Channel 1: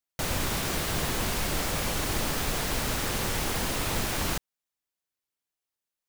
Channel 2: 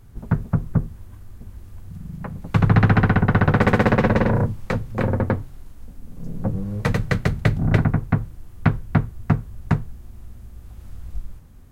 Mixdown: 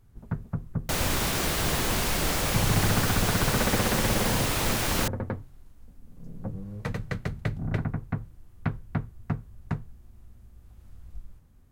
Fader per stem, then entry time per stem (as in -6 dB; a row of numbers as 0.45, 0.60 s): +2.5, -11.0 dB; 0.70, 0.00 s